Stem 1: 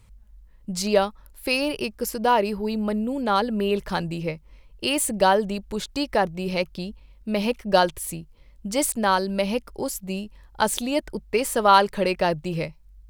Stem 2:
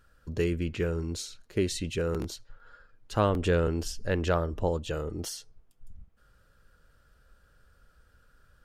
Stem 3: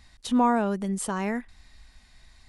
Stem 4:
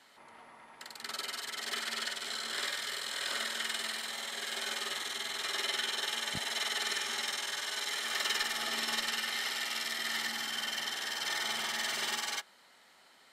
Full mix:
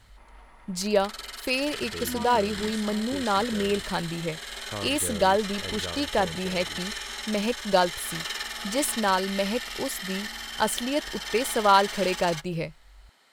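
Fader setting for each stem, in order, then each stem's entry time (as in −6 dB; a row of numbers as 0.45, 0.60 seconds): −3.0, −11.0, −15.0, −0.5 decibels; 0.00, 1.55, 1.75, 0.00 seconds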